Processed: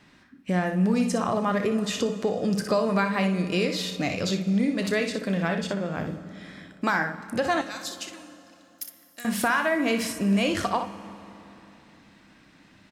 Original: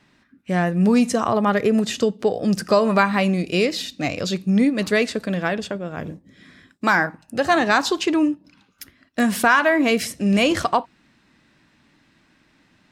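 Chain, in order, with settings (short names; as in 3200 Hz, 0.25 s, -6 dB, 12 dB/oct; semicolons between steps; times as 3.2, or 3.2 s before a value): early reflections 31 ms -12.5 dB, 61 ms -8.5 dB; compressor 2:1, threshold -31 dBFS, peak gain reduction 11 dB; 7.61–9.25 pre-emphasis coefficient 0.97; reverb RT60 3.3 s, pre-delay 3 ms, DRR 12 dB; gain +2 dB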